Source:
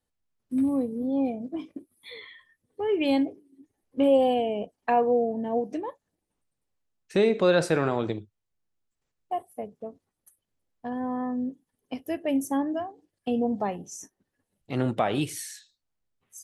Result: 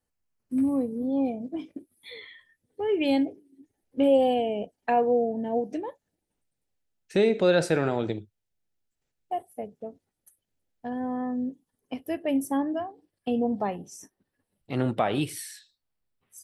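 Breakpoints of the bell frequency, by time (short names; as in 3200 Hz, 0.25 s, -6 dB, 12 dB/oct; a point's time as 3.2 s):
bell -10 dB 0.24 oct
0.85 s 3600 Hz
1.59 s 1100 Hz
11.49 s 1100 Hz
12.05 s 6600 Hz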